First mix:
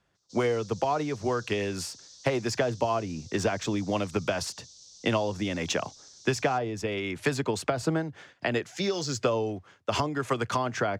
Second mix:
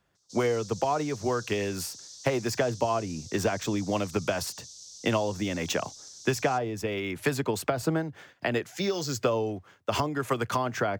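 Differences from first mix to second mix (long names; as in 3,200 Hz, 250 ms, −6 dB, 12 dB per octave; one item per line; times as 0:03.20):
speech: add high-shelf EQ 5,400 Hz −11 dB
master: remove high-frequency loss of the air 84 metres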